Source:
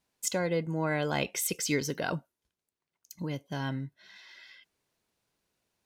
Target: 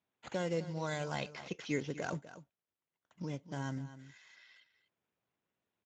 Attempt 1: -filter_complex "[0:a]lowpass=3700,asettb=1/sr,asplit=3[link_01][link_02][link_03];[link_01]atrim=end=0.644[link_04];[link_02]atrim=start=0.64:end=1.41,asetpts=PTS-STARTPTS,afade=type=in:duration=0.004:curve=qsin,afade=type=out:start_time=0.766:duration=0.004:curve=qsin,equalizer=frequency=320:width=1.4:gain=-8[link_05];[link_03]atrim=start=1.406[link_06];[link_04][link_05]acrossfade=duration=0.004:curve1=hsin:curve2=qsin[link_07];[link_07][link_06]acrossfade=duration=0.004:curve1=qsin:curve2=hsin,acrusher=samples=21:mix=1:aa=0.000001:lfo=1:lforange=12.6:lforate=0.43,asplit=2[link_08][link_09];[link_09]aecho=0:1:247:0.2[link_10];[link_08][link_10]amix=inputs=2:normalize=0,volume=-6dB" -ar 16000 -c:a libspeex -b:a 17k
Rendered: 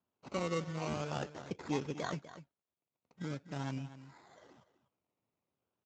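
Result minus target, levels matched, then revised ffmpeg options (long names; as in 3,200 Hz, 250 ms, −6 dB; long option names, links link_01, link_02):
sample-and-hold swept by an LFO: distortion +8 dB
-filter_complex "[0:a]lowpass=3700,asettb=1/sr,asplit=3[link_01][link_02][link_03];[link_01]atrim=end=0.644[link_04];[link_02]atrim=start=0.64:end=1.41,asetpts=PTS-STARTPTS,afade=type=in:duration=0.004:curve=qsin,afade=type=out:start_time=0.766:duration=0.004:curve=qsin,equalizer=frequency=320:width=1.4:gain=-8[link_05];[link_03]atrim=start=1.406[link_06];[link_04][link_05]acrossfade=duration=0.004:curve1=hsin:curve2=qsin[link_07];[link_07][link_06]acrossfade=duration=0.004:curve1=qsin:curve2=hsin,acrusher=samples=7:mix=1:aa=0.000001:lfo=1:lforange=4.2:lforate=0.43,asplit=2[link_08][link_09];[link_09]aecho=0:1:247:0.2[link_10];[link_08][link_10]amix=inputs=2:normalize=0,volume=-6dB" -ar 16000 -c:a libspeex -b:a 17k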